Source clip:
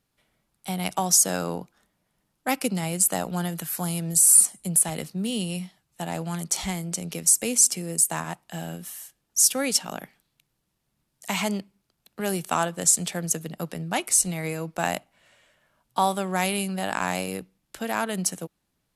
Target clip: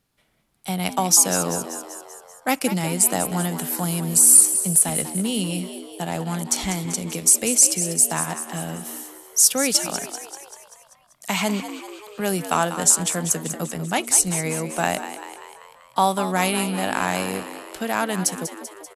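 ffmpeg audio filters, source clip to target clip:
ffmpeg -i in.wav -filter_complex "[0:a]asplit=8[link_01][link_02][link_03][link_04][link_05][link_06][link_07][link_08];[link_02]adelay=194,afreqshift=70,volume=-11dB[link_09];[link_03]adelay=388,afreqshift=140,volume=-15.6dB[link_10];[link_04]adelay=582,afreqshift=210,volume=-20.2dB[link_11];[link_05]adelay=776,afreqshift=280,volume=-24.7dB[link_12];[link_06]adelay=970,afreqshift=350,volume=-29.3dB[link_13];[link_07]adelay=1164,afreqshift=420,volume=-33.9dB[link_14];[link_08]adelay=1358,afreqshift=490,volume=-38.5dB[link_15];[link_01][link_09][link_10][link_11][link_12][link_13][link_14][link_15]amix=inputs=8:normalize=0,volume=3.5dB" out.wav

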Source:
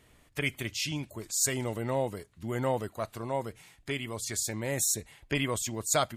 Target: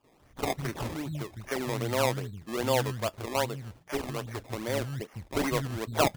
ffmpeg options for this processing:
ffmpeg -i in.wav -filter_complex "[0:a]aresample=8000,aresample=44100,acrossover=split=210|2600[link_01][link_02][link_03];[link_02]adelay=40[link_04];[link_01]adelay=200[link_05];[link_05][link_04][link_03]amix=inputs=3:normalize=0,acrusher=samples=21:mix=1:aa=0.000001:lfo=1:lforange=21:lforate=2.5,volume=3.5dB" out.wav

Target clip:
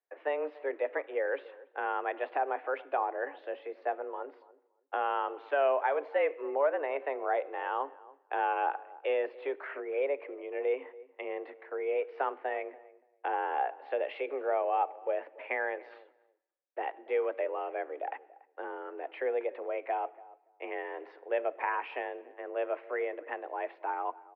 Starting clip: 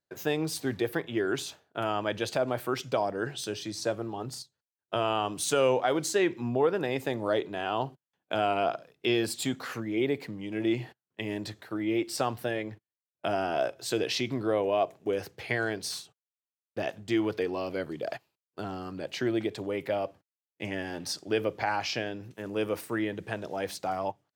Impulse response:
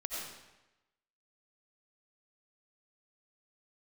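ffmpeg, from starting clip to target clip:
-filter_complex "[0:a]asplit=2[link_01][link_02];[1:a]atrim=start_sample=2205[link_03];[link_02][link_03]afir=irnorm=-1:irlink=0,volume=-24dB[link_04];[link_01][link_04]amix=inputs=2:normalize=0,highpass=frequency=200:width_type=q:width=0.5412,highpass=frequency=200:width_type=q:width=1.307,lowpass=frequency=2300:width_type=q:width=0.5176,lowpass=frequency=2300:width_type=q:width=0.7071,lowpass=frequency=2300:width_type=q:width=1.932,afreqshift=140,asplit=2[link_05][link_06];[link_06]adelay=285,lowpass=frequency=960:poles=1,volume=-18.5dB,asplit=2[link_07][link_08];[link_08]adelay=285,lowpass=frequency=960:poles=1,volume=0.19[link_09];[link_05][link_07][link_09]amix=inputs=3:normalize=0,volume=-3dB"

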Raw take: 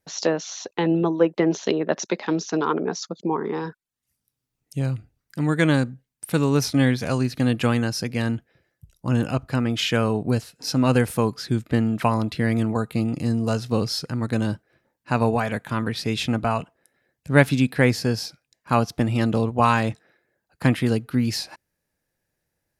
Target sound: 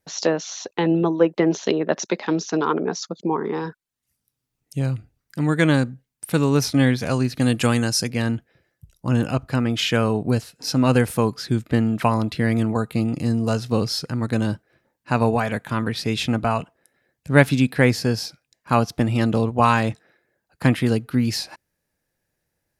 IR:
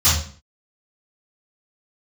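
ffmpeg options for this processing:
-filter_complex "[0:a]asettb=1/sr,asplit=3[link_01][link_02][link_03];[link_01]atrim=end=7.414[link_04];[link_02]atrim=start=7.41:end=8.1,asetpts=PTS-STARTPTS,afade=type=in:duration=0.004:curve=qsin,afade=type=out:start_time=0.686:duration=0.004:curve=qsin,equalizer=frequency=8300:width=0.79:gain=10.5[link_05];[link_03]atrim=start=8.096[link_06];[link_04][link_05]acrossfade=duration=0.004:curve1=hsin:curve2=qsin[link_07];[link_07][link_06]acrossfade=duration=0.004:curve1=qsin:curve2=hsin,volume=1.5dB"

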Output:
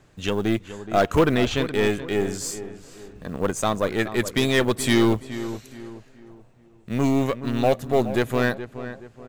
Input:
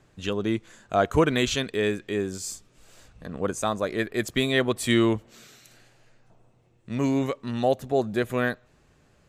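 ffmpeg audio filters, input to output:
ffmpeg -i in.wav -filter_complex "[0:a]aeval=exprs='0.422*(cos(1*acos(clip(val(0)/0.422,-1,1)))-cos(1*PI/2))+0.0596*(cos(5*acos(clip(val(0)/0.422,-1,1)))-cos(5*PI/2))+0.0473*(cos(6*acos(clip(val(0)/0.422,-1,1)))-cos(6*PI/2))+0.0119*(cos(7*acos(clip(val(0)/0.422,-1,1)))-cos(7*PI/2))+0.0668*(cos(8*acos(clip(val(0)/0.422,-1,1)))-cos(8*PI/2))':channel_layout=same,asettb=1/sr,asplit=3[link_01][link_02][link_03];[link_01]atrim=end=1.194[link_04];[link_02]atrim=start=1.19:end=1.62,asetpts=PTS-STARTPTS,afade=type=in:duration=0.004:curve=qsin,afade=type=out:start_time=0.426:duration=0.004:curve=qsin,aemphasis=mode=reproduction:type=75fm[link_05];[link_03]atrim=start=1.616[link_06];[link_04][link_05]acrossfade=duration=0.004:curve1=hsin:curve2=qsin[link_07];[link_07][link_06]acrossfade=duration=0.004:curve1=qsin:curve2=hsin,acrusher=bits=8:mode=log:mix=0:aa=0.000001,asplit=2[link_08][link_09];[link_09]adelay=423,lowpass=frequency=2100:poles=1,volume=-12dB,asplit=2[link_10][link_11];[link_11]adelay=423,lowpass=frequency=2100:poles=1,volume=0.39,asplit=2[link_12][link_13];[link_13]adelay=423,lowpass=frequency=2100:poles=1,volume=0.39,asplit=2[link_14][link_15];[link_15]adelay=423,lowpass=frequency=2100:poles=1,volume=0.39[link_16];[link_10][link_12][link_14][link_16]amix=inputs=4:normalize=0[link_17];[link_08][link_17]amix=inputs=2:normalize=0" out.wav

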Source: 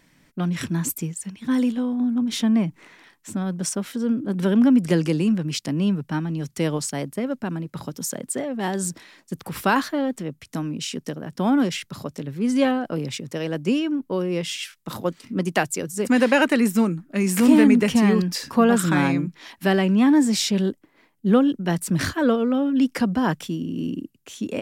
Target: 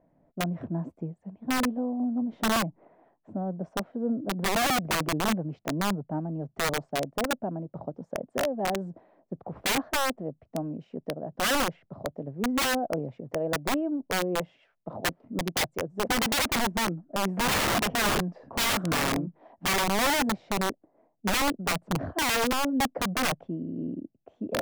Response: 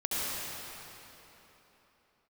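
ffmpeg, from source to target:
-af "lowpass=frequency=670:width_type=q:width=4.9,aeval=exprs='(mod(4.47*val(0)+1,2)-1)/4.47':channel_layout=same,volume=-7.5dB"

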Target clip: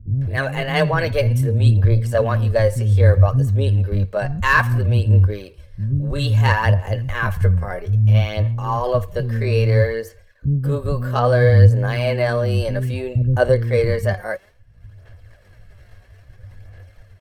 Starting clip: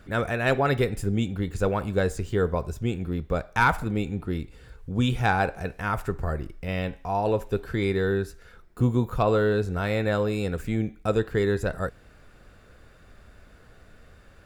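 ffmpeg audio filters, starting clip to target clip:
ffmpeg -i in.wav -filter_complex "[0:a]agate=range=-33dB:threshold=-39dB:ratio=3:detection=peak,equalizer=frequency=85:width_type=o:width=0.54:gain=15,aecho=1:1:2.1:0.39,acompressor=mode=upward:threshold=-34dB:ratio=2.5,asetrate=60591,aresample=44100,atempo=0.727827,aphaser=in_gain=1:out_gain=1:delay=4.7:decay=0.43:speed=0.72:type=sinusoidal,acrossover=split=310[link_01][link_02];[link_02]adelay=180[link_03];[link_01][link_03]amix=inputs=2:normalize=0,asetrate=37044,aresample=44100,volume=3dB" out.wav

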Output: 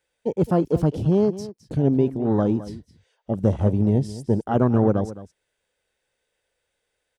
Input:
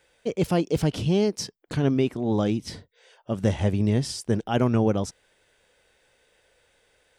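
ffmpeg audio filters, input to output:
ffmpeg -i in.wav -af "afwtdn=0.0282,highshelf=frequency=8600:gain=6.5,aecho=1:1:213:0.168,volume=3dB" out.wav

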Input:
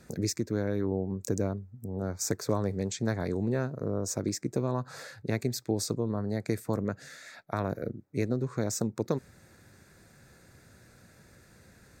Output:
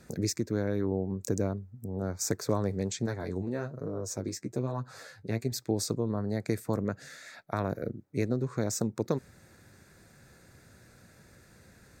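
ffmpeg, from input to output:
ffmpeg -i in.wav -filter_complex "[0:a]asettb=1/sr,asplit=3[link_01][link_02][link_03];[link_01]atrim=end=3.064[link_04];[link_02]atrim=start=3.06:end=5.52,asetpts=PTS-STARTPTS,afade=type=in:duration=0.004:curve=qsin,afade=type=out:start_time=2.456:duration=0.004:curve=qsin,flanger=delay=6.2:depth=6:regen=27:speed=1.2:shape=triangular[link_05];[link_03]atrim=start=5.516[link_06];[link_04][link_05]acrossfade=duration=0.004:curve1=hsin:curve2=qsin[link_07];[link_07][link_06]acrossfade=duration=0.004:curve1=qsin:curve2=hsin" out.wav

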